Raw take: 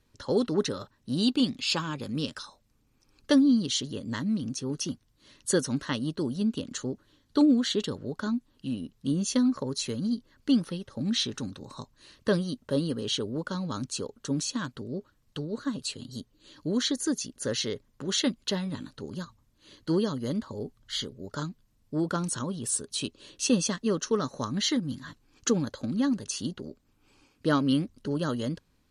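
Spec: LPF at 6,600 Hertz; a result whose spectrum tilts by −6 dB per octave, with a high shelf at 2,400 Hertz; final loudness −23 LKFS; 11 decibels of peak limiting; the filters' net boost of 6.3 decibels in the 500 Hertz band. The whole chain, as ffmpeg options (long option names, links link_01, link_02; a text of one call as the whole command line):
ffmpeg -i in.wav -af "lowpass=6600,equalizer=frequency=500:width_type=o:gain=8,highshelf=frequency=2400:gain=-8,volume=8dB,alimiter=limit=-11.5dB:level=0:latency=1" out.wav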